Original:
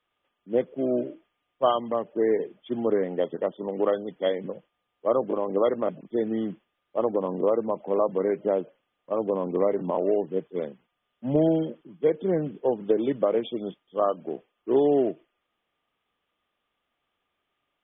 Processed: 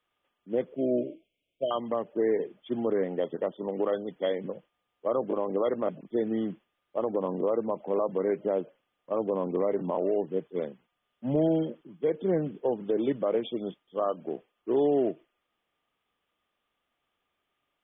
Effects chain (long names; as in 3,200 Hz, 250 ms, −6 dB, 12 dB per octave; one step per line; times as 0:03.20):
brickwall limiter −16 dBFS, peak gain reduction 6.5 dB
0:00.76–0:01.71: linear-phase brick-wall band-stop 700–2,100 Hz
level −1.5 dB